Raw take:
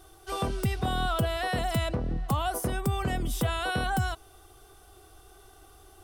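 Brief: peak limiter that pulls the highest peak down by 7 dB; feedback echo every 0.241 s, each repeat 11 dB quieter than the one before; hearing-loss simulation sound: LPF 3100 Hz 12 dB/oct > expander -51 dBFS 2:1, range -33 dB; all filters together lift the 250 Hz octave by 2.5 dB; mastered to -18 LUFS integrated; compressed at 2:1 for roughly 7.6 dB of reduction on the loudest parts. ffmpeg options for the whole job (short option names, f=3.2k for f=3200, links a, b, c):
-af "equalizer=f=250:t=o:g=3.5,acompressor=threshold=-36dB:ratio=2,alimiter=level_in=5.5dB:limit=-24dB:level=0:latency=1,volume=-5.5dB,lowpass=3.1k,aecho=1:1:241|482|723:0.282|0.0789|0.0221,agate=range=-33dB:threshold=-51dB:ratio=2,volume=21dB"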